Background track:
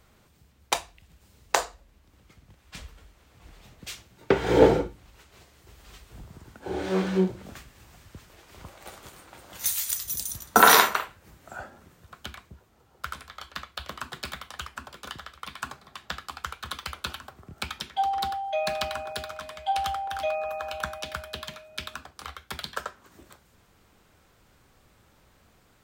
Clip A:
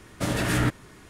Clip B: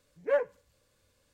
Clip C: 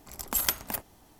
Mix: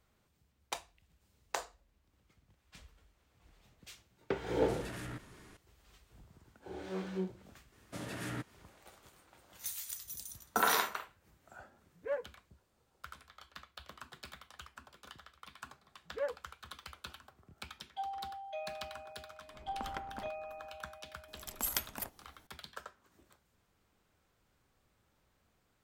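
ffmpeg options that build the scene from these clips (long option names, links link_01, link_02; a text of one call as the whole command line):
ffmpeg -i bed.wav -i cue0.wav -i cue1.wav -i cue2.wav -filter_complex "[1:a]asplit=2[link_01][link_02];[2:a]asplit=2[link_03][link_04];[3:a]asplit=2[link_05][link_06];[0:a]volume=-14dB[link_07];[link_01]acompressor=threshold=-31dB:ratio=10:attack=0.26:release=27:knee=1:detection=rms[link_08];[link_02]highpass=110[link_09];[link_05]lowpass=1500[link_10];[link_08]atrim=end=1.09,asetpts=PTS-STARTPTS,volume=-7.5dB,afade=type=in:duration=0.004:curve=hsin,afade=type=out:start_time=1.086:duration=0.004:curve=hsin,adelay=4480[link_11];[link_09]atrim=end=1.09,asetpts=PTS-STARTPTS,volume=-16dB,afade=type=in:duration=0.004:curve=hsin,afade=type=out:start_time=1.086:duration=0.004:curve=hsin,adelay=7720[link_12];[link_03]atrim=end=1.33,asetpts=PTS-STARTPTS,volume=-10dB,afade=type=in:duration=0.004:curve=hsin,afade=type=out:start_time=1.326:duration=0.004:curve=hsin,adelay=519498S[link_13];[link_04]atrim=end=1.33,asetpts=PTS-STARTPTS,volume=-10dB,afade=type=in:duration=0.004:curve=hsin,afade=type=out:start_time=1.326:duration=0.004:curve=hsin,adelay=15890[link_14];[link_10]atrim=end=1.19,asetpts=PTS-STARTPTS,volume=-7dB,afade=type=in:duration=0.004:curve=hsin,afade=type=out:start_time=1.186:duration=0.004:curve=hsin,adelay=19480[link_15];[link_06]atrim=end=1.19,asetpts=PTS-STARTPTS,volume=-8dB,afade=type=in:duration=0.004:curve=hsin,afade=type=out:start_time=1.186:duration=0.004:curve=hsin,adelay=21280[link_16];[link_07][link_11][link_12][link_13][link_14][link_15][link_16]amix=inputs=7:normalize=0" out.wav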